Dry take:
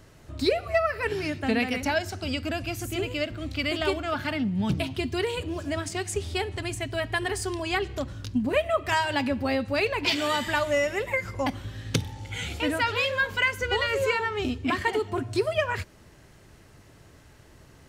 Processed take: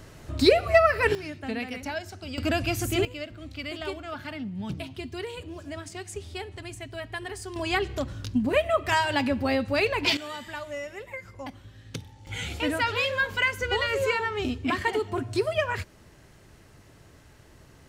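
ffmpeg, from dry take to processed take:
-af "asetnsamples=n=441:p=0,asendcmd='1.15 volume volume -7dB;2.38 volume volume 4.5dB;3.05 volume volume -7.5dB;7.56 volume volume 1dB;10.17 volume volume -11dB;12.27 volume volume -0.5dB',volume=1.88"

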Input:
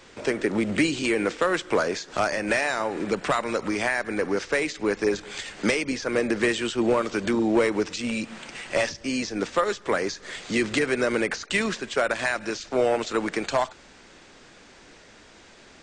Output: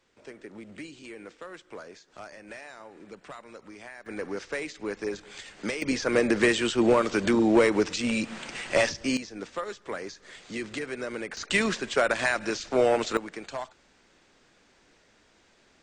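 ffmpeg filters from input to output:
-af "asetnsamples=n=441:p=0,asendcmd='4.06 volume volume -8.5dB;5.82 volume volume 1dB;9.17 volume volume -10.5dB;11.37 volume volume 0dB;13.17 volume volume -11.5dB',volume=0.106"

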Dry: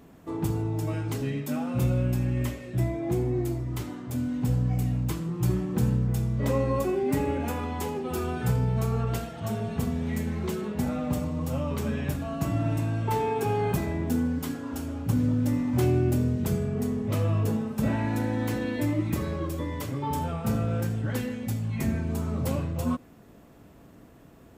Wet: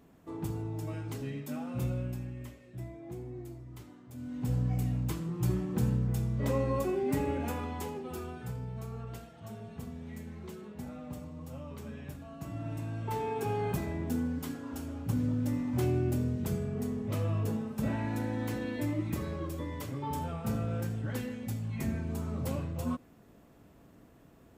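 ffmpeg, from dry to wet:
-af "volume=3.55,afade=t=out:st=1.87:d=0.51:silence=0.421697,afade=t=in:st=4.16:d=0.42:silence=0.281838,afade=t=out:st=7.52:d=0.96:silence=0.334965,afade=t=in:st=12.4:d=1.07:silence=0.398107"

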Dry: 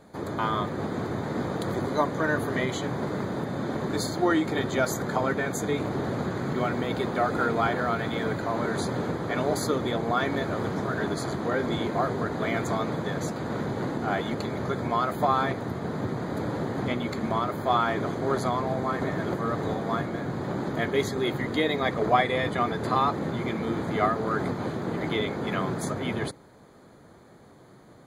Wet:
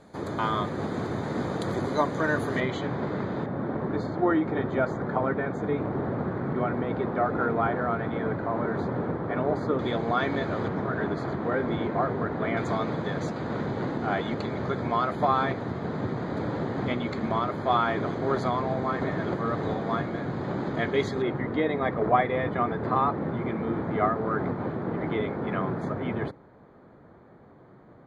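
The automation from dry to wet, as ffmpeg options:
-af "asetnsamples=n=441:p=0,asendcmd='2.6 lowpass f 3400;3.46 lowpass f 1600;9.79 lowpass f 4100;10.68 lowpass f 2300;12.57 lowpass f 4300;21.22 lowpass f 1800',lowpass=9200"

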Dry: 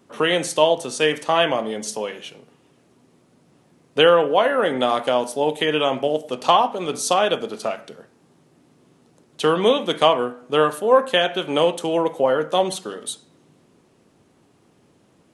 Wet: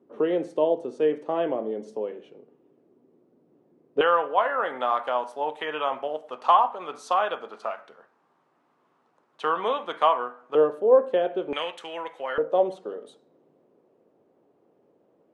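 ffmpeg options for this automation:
-af "asetnsamples=n=441:p=0,asendcmd='4.01 bandpass f 1100;10.55 bandpass f 440;11.53 bandpass f 1900;12.38 bandpass f 510',bandpass=f=380:t=q:w=1.8:csg=0"

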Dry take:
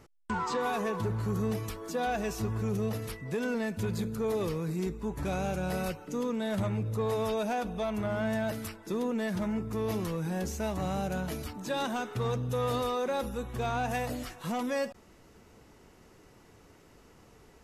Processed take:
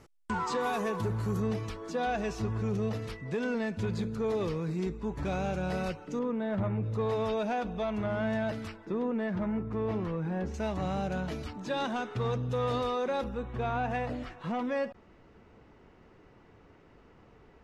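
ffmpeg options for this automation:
-af "asetnsamples=n=441:p=0,asendcmd='1.4 lowpass f 5200;6.19 lowpass f 1900;6.83 lowpass f 4200;8.85 lowpass f 2100;10.54 lowpass f 4700;13.24 lowpass f 2700',lowpass=12000"

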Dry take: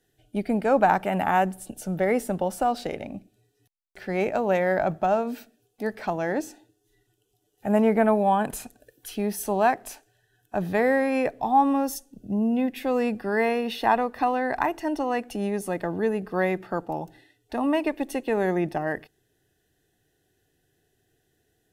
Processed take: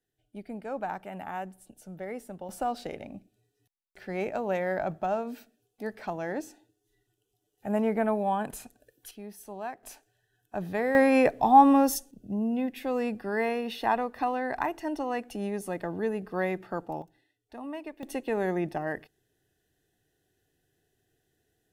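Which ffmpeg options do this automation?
-af "asetnsamples=n=441:p=0,asendcmd='2.49 volume volume -6.5dB;9.11 volume volume -16dB;9.83 volume volume -6.5dB;10.95 volume volume 3dB;12.11 volume volume -5dB;17.02 volume volume -14.5dB;18.03 volume volume -4.5dB',volume=0.188"

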